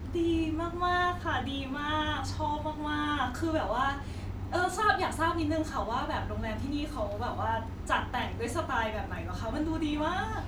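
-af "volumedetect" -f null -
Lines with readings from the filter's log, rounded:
mean_volume: -31.1 dB
max_volume: -12.6 dB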